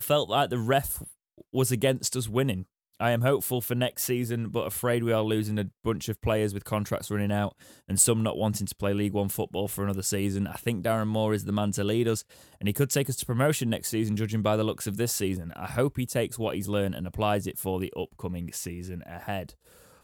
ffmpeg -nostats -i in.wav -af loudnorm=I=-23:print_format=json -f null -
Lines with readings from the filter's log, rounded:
"input_i" : "-28.5",
"input_tp" : "-8.5",
"input_lra" : "5.7",
"input_thresh" : "-38.8",